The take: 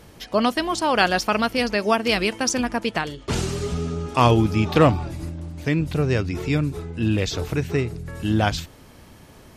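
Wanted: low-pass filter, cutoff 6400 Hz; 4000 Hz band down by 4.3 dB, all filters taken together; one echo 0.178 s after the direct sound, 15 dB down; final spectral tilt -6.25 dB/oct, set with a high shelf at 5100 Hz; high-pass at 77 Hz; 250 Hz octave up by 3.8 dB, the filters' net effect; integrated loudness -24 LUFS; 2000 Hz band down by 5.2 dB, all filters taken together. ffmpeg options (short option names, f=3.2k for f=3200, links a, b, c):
-af "highpass=77,lowpass=6.4k,equalizer=f=250:t=o:g=5,equalizer=f=2k:t=o:g=-6.5,equalizer=f=4k:t=o:g=-5,highshelf=f=5.1k:g=4.5,aecho=1:1:178:0.178,volume=-3dB"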